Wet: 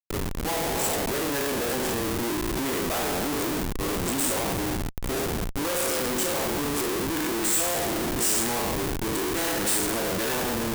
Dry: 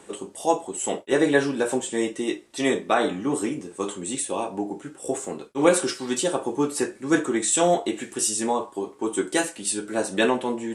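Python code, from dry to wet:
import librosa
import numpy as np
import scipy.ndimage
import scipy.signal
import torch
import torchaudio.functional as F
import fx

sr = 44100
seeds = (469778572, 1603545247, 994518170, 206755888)

y = fx.spec_trails(x, sr, decay_s=1.47)
y = fx.schmitt(y, sr, flips_db=-24.5)
y = fx.high_shelf(y, sr, hz=7400.0, db=10.5)
y = y * librosa.db_to_amplitude(-7.0)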